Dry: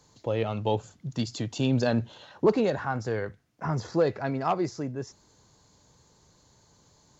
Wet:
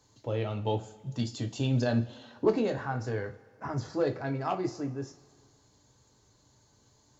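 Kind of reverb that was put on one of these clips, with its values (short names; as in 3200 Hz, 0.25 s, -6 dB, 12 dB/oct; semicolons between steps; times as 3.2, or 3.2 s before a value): two-slope reverb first 0.24 s, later 1.8 s, from -21 dB, DRR 4.5 dB; gain -5.5 dB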